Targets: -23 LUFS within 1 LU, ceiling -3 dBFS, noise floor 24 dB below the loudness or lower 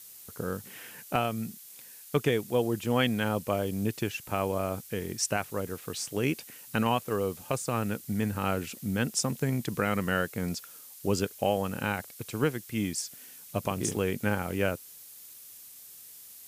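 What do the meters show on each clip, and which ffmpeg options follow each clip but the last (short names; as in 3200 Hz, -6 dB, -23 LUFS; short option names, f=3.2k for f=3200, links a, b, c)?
noise floor -49 dBFS; noise floor target -55 dBFS; loudness -31.0 LUFS; peak -14.0 dBFS; loudness target -23.0 LUFS
-> -af "afftdn=nr=6:nf=-49"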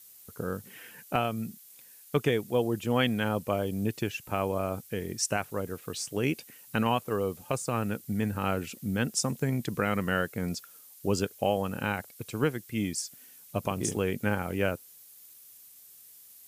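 noise floor -53 dBFS; noise floor target -55 dBFS
-> -af "afftdn=nr=6:nf=-53"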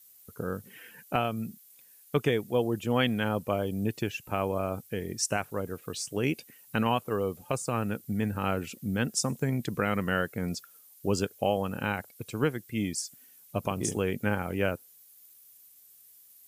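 noise floor -57 dBFS; loudness -31.0 LUFS; peak -14.0 dBFS; loudness target -23.0 LUFS
-> -af "volume=8dB"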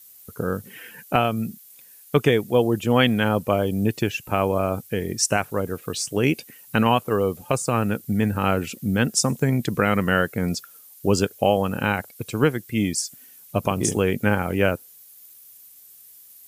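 loudness -23.0 LUFS; peak -6.0 dBFS; noise floor -49 dBFS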